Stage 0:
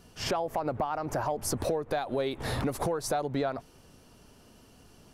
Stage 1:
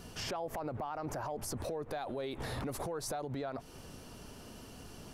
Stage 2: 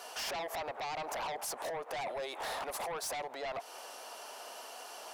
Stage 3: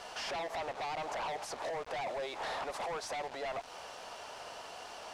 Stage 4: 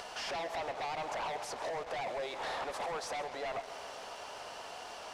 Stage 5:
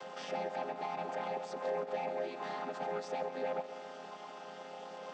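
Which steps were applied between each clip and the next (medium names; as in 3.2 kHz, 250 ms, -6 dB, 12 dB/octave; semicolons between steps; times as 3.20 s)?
compression 2.5:1, threshold -40 dBFS, peak gain reduction 10 dB; peak limiter -36.5 dBFS, peak gain reduction 9.5 dB; trim +6 dB
ladder high-pass 580 Hz, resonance 40%; in parallel at -8.5 dB: sine folder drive 13 dB, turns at -34 dBFS; on the sum: trim +3.5 dB
bit crusher 8-bit; distance through air 88 m; trim +1.5 dB
upward compressor, threshold -43 dBFS; tape echo 134 ms, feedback 82%, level -12 dB, low-pass 5.2 kHz
vocoder on a held chord minor triad, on F3; trim +1 dB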